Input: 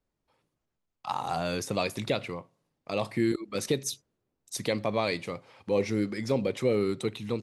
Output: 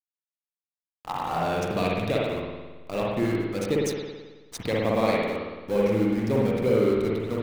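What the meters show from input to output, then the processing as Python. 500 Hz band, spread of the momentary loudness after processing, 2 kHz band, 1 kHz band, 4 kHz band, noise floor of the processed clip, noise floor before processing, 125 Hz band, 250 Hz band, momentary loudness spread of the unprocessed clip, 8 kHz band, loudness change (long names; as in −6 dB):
+5.0 dB, 13 LU, +3.0 dB, +4.5 dB, −0.5 dB, below −85 dBFS, −83 dBFS, +5.0 dB, +5.0 dB, 13 LU, −4.0 dB, +4.5 dB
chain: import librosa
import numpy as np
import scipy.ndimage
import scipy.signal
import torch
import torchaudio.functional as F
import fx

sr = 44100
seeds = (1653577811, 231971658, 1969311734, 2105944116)

y = fx.dmg_noise_colour(x, sr, seeds[0], colour='white', level_db=-48.0)
y = fx.backlash(y, sr, play_db=-29.0)
y = fx.rev_spring(y, sr, rt60_s=1.3, pass_ms=(54,), chirp_ms=50, drr_db=-4.0)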